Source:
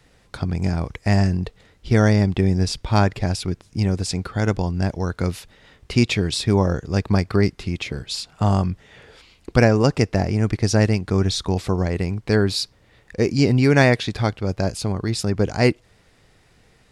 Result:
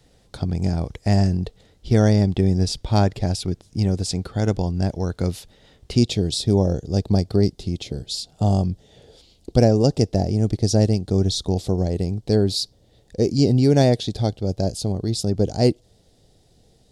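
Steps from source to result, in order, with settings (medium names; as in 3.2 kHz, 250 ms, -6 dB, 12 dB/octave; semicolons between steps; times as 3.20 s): high-order bell 1.6 kHz -8 dB, from 5.96 s -16 dB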